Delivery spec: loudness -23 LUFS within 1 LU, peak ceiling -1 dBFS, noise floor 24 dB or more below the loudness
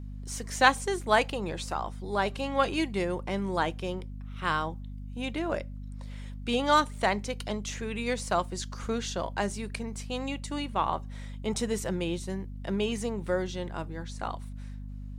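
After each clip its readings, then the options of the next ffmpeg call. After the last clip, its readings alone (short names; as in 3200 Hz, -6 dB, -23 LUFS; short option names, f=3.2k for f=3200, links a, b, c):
hum 50 Hz; harmonics up to 250 Hz; hum level -37 dBFS; loudness -30.5 LUFS; peak -6.0 dBFS; loudness target -23.0 LUFS
-> -af "bandreject=f=50:t=h:w=6,bandreject=f=100:t=h:w=6,bandreject=f=150:t=h:w=6,bandreject=f=200:t=h:w=6,bandreject=f=250:t=h:w=6"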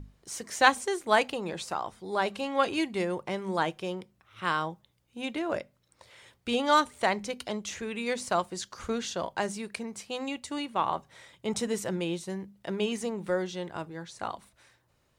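hum none; loudness -31.0 LUFS; peak -6.0 dBFS; loudness target -23.0 LUFS
-> -af "volume=8dB,alimiter=limit=-1dB:level=0:latency=1"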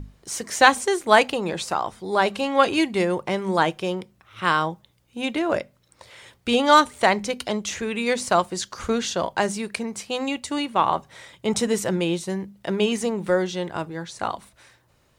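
loudness -23.0 LUFS; peak -1.0 dBFS; noise floor -63 dBFS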